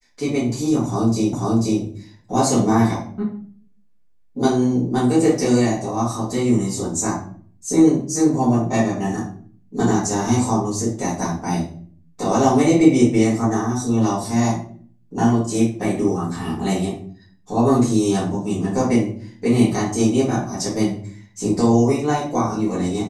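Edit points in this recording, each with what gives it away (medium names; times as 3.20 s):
1.33 s: repeat of the last 0.49 s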